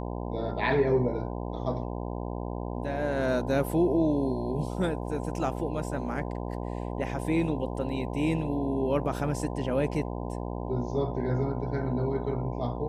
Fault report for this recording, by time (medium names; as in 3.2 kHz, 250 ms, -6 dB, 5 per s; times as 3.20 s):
buzz 60 Hz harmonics 17 -34 dBFS